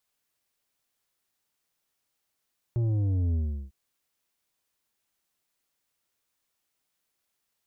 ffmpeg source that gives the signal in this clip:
-f lavfi -i "aevalsrc='0.0631*clip((0.95-t)/0.37,0,1)*tanh(2.51*sin(2*PI*120*0.95/log(65/120)*(exp(log(65/120)*t/0.95)-1)))/tanh(2.51)':d=0.95:s=44100"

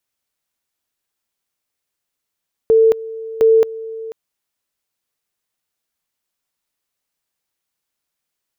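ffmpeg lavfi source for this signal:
-f lavfi -i "aevalsrc='pow(10,(-7.5-18*gte(mod(t,0.71),0.22))/20)*sin(2*PI*447*t)':d=1.42:s=44100"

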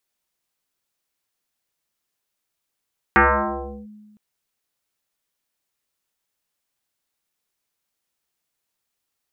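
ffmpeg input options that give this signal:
-f lavfi -i "aevalsrc='0.355*pow(10,-3*t/1.48)*sin(2*PI*211*t+6.6*clip(1-t/0.71,0,1)*sin(2*PI*1.32*211*t))':d=1.01:s=44100"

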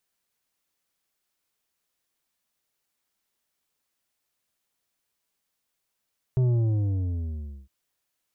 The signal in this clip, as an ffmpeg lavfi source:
-f lavfi -i "aevalsrc='0.106*clip((1.31-t)/1.3,0,1)*tanh(2.51*sin(2*PI*130*1.31/log(65/130)*(exp(log(65/130)*t/1.31)-1)))/tanh(2.51)':d=1.31:s=44100"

